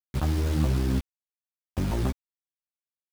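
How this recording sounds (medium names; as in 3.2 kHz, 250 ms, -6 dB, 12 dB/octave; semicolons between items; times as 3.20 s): a quantiser's noise floor 6-bit, dither none; a shimmering, thickened sound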